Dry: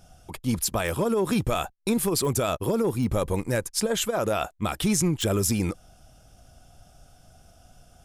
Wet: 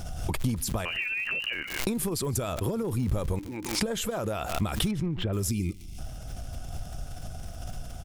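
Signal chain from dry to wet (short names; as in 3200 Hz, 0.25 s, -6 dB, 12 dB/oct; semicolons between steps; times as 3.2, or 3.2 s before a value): 0.85–1.79 inverted band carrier 2900 Hz; 3.39–3.81 vowel filter u; compressor 12:1, threshold -37 dBFS, peak gain reduction 17.5 dB; crackle 190/s -49 dBFS; 4.91–5.33 air absorption 410 m; echo 0.15 s -24 dB; 5.51–5.99 spectral gain 430–2000 Hz -19 dB; low shelf 150 Hz +9 dB; backwards sustainer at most 62 dB/s; gain +8 dB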